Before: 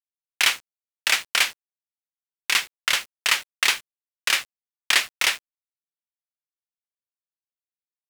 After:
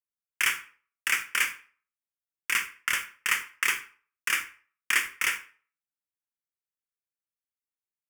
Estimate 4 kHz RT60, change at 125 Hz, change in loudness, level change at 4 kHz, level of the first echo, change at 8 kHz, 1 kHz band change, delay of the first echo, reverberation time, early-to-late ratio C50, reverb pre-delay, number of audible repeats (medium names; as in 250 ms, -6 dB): 0.35 s, no reading, -5.5 dB, -11.0 dB, no echo, -6.0 dB, -5.0 dB, no echo, 0.45 s, 13.0 dB, 23 ms, no echo